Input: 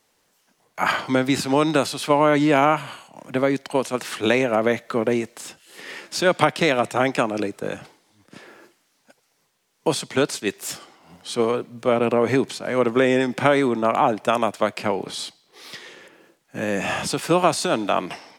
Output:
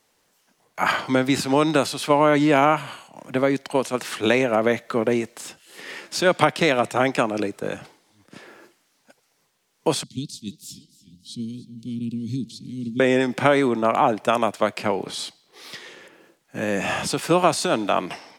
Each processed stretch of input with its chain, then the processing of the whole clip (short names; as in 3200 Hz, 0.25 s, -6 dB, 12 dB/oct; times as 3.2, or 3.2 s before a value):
10.03–13 elliptic band-stop 230–3900 Hz, stop band 50 dB + high shelf 4900 Hz -11 dB + warbling echo 0.299 s, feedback 55%, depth 81 cents, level -18 dB
whole clip: dry